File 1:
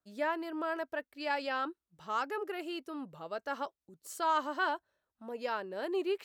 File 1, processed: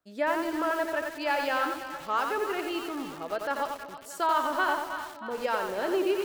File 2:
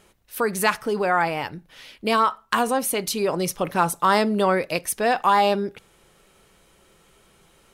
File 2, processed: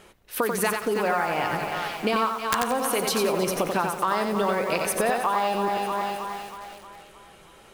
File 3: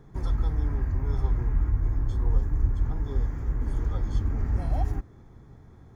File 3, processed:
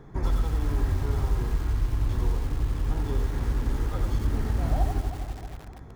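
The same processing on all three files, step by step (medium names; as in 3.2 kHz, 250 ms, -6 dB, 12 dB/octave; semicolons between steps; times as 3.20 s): tone controls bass -4 dB, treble -5 dB; two-band feedback delay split 710 Hz, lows 236 ms, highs 315 ms, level -12 dB; compression 12:1, threshold -28 dBFS; integer overflow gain 17 dB; bit-crushed delay 90 ms, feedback 35%, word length 8-bit, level -4 dB; trim +6.5 dB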